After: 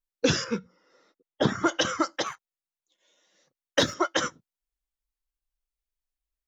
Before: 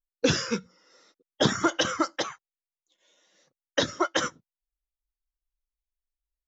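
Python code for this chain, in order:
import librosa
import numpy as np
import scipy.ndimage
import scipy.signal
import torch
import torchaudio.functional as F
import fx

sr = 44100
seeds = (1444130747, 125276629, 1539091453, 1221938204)

y = fx.lowpass(x, sr, hz=1700.0, slope=6, at=(0.44, 1.66))
y = fx.leveller(y, sr, passes=1, at=(2.26, 3.94))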